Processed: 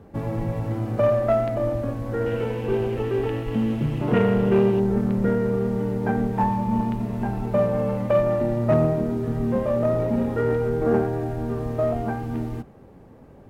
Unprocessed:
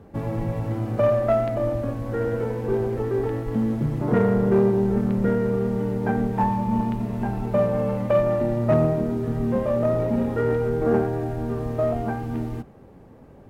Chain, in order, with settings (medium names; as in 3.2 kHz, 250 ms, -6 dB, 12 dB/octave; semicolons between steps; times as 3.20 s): 2.26–4.80 s: peaking EQ 2.8 kHz +14 dB 0.57 oct